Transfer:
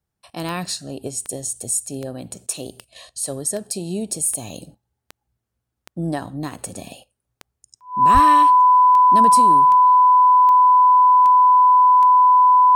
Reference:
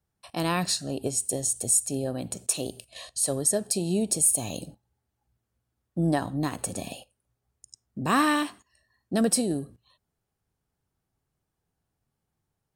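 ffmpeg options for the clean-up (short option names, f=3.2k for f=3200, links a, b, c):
-filter_complex "[0:a]adeclick=t=4,bandreject=f=1k:w=30,asplit=3[a][b][c];[a]afade=t=out:st=8.13:d=0.02[d];[b]highpass=f=140:w=0.5412,highpass=f=140:w=1.3066,afade=t=in:st=8.13:d=0.02,afade=t=out:st=8.25:d=0.02[e];[c]afade=t=in:st=8.25:d=0.02[f];[d][e][f]amix=inputs=3:normalize=0"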